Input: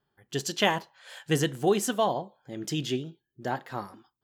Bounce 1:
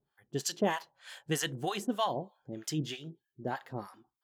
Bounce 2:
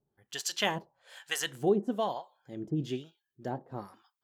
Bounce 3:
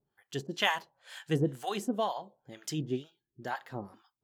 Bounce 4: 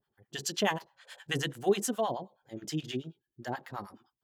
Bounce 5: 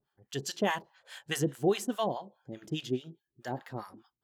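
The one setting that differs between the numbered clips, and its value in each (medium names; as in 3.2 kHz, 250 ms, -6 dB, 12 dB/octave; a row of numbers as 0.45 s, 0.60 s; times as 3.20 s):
harmonic tremolo, rate: 3.2 Hz, 1.1 Hz, 2.1 Hz, 9.4 Hz, 4.8 Hz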